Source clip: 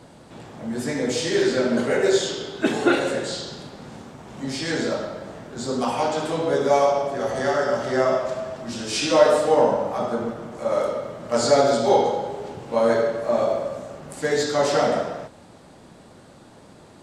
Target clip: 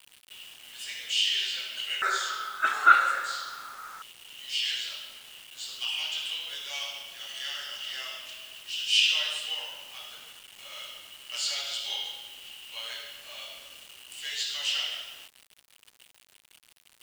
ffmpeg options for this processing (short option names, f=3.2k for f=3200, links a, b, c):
-af "asetnsamples=n=441:p=0,asendcmd='2.02 highpass f 1300;4.02 highpass f 2900',highpass=f=2.9k:t=q:w=15,acrusher=bits=6:mix=0:aa=0.000001,volume=-6.5dB"